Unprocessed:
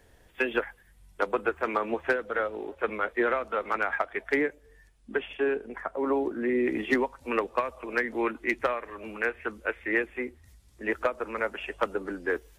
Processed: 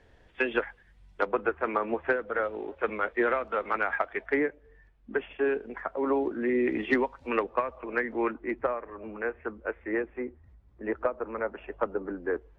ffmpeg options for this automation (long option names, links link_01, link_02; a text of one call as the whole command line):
ffmpeg -i in.wav -af "asetnsamples=nb_out_samples=441:pad=0,asendcmd='1.25 lowpass f 2200;2.44 lowpass f 3200;4.26 lowpass f 2100;5.44 lowpass f 3700;7.43 lowpass f 2000;8.34 lowpass f 1200',lowpass=4000" out.wav